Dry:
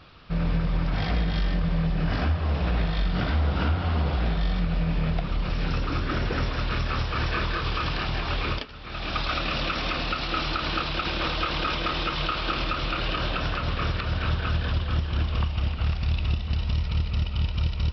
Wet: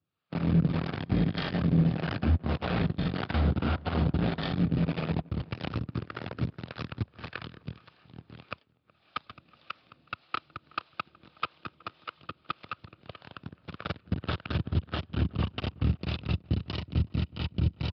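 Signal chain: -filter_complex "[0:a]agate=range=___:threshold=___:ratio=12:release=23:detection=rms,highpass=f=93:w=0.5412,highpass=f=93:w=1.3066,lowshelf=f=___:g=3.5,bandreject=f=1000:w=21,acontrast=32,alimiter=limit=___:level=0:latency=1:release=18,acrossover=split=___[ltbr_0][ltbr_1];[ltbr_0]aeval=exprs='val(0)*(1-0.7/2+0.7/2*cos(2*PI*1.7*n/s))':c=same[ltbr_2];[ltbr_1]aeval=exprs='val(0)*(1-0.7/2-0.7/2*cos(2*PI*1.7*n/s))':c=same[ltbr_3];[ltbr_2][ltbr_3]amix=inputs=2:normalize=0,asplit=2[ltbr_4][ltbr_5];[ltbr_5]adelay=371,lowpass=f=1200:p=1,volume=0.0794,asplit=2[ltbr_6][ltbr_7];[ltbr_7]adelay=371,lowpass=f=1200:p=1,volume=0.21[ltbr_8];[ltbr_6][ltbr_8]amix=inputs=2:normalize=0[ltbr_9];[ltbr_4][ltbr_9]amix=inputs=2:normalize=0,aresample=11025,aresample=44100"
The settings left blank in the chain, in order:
0.0141, 0.0631, 340, 0.188, 430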